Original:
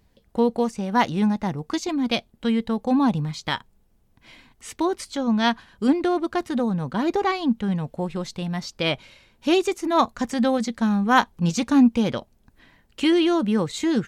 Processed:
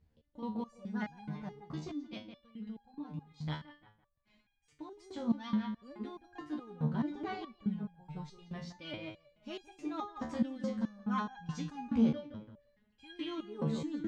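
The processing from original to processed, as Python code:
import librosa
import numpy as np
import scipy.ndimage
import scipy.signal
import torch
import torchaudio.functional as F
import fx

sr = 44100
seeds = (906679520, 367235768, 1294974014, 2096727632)

y = fx.peak_eq(x, sr, hz=96.0, db=11.5, octaves=2.5)
y = fx.level_steps(y, sr, step_db=12, at=(1.59, 4.95))
y = fx.air_absorb(y, sr, metres=78.0)
y = fx.echo_filtered(y, sr, ms=169, feedback_pct=31, hz=3000.0, wet_db=-7)
y = fx.resonator_held(y, sr, hz=4.7, low_hz=76.0, high_hz=810.0)
y = y * librosa.db_to_amplitude(-6.5)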